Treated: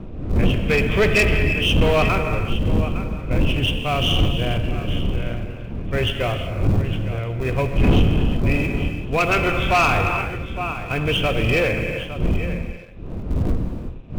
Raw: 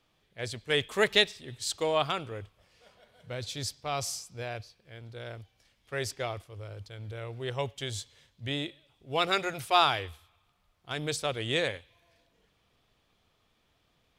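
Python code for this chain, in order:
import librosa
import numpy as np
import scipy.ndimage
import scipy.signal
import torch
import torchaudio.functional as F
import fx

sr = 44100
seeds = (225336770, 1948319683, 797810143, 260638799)

p1 = fx.freq_compress(x, sr, knee_hz=2300.0, ratio=4.0)
p2 = fx.dmg_wind(p1, sr, seeds[0], corner_hz=250.0, level_db=-36.0)
p3 = fx.schmitt(p2, sr, flips_db=-31.5)
p4 = p2 + (p3 * librosa.db_to_amplitude(-11.5))
p5 = fx.peak_eq(p4, sr, hz=1700.0, db=-3.5, octaves=0.27)
p6 = fx.notch(p5, sr, hz=850.0, q=12.0)
p7 = p6 + 10.0 ** (-13.5 / 20.0) * np.pad(p6, (int(860 * sr / 1000.0), 0))[:len(p6)]
p8 = fx.rev_gated(p7, sr, seeds[1], gate_ms=400, shape='flat', drr_db=5.5)
p9 = 10.0 ** (-18.5 / 20.0) * np.tanh(p8 / 10.0 ** (-18.5 / 20.0))
p10 = fx.low_shelf(p9, sr, hz=110.0, db=9.0)
p11 = fx.leveller(p10, sr, passes=1)
y = p11 * librosa.db_to_amplitude(5.0)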